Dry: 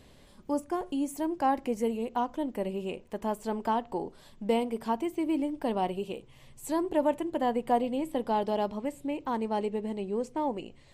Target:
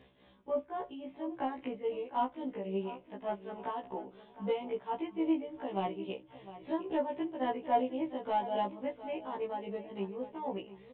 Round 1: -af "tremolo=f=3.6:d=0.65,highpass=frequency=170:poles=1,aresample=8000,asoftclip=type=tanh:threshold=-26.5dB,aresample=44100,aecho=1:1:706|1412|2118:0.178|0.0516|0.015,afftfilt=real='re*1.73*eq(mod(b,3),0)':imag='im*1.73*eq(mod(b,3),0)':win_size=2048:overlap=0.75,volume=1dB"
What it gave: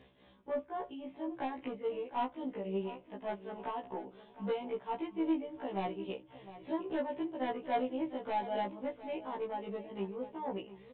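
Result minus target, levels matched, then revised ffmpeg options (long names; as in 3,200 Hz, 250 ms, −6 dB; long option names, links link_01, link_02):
soft clipping: distortion +13 dB
-af "tremolo=f=3.6:d=0.65,highpass=frequency=170:poles=1,aresample=8000,asoftclip=type=tanh:threshold=-17dB,aresample=44100,aecho=1:1:706|1412|2118:0.178|0.0516|0.015,afftfilt=real='re*1.73*eq(mod(b,3),0)':imag='im*1.73*eq(mod(b,3),0)':win_size=2048:overlap=0.75,volume=1dB"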